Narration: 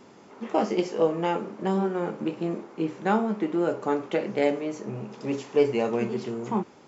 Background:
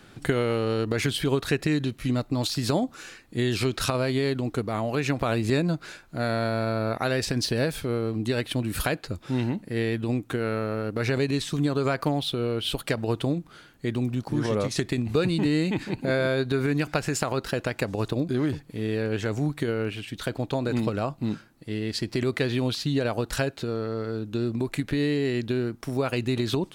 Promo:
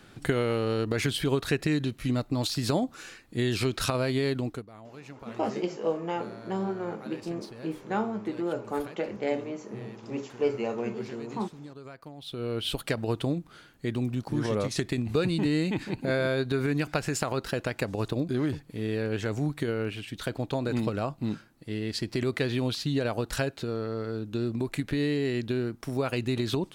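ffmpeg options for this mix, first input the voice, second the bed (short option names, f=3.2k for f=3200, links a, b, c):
-filter_complex "[0:a]adelay=4850,volume=-5.5dB[a];[1:a]volume=15.5dB,afade=t=out:st=4.43:d=0.23:silence=0.125893,afade=t=in:st=12.17:d=0.42:silence=0.133352[b];[a][b]amix=inputs=2:normalize=0"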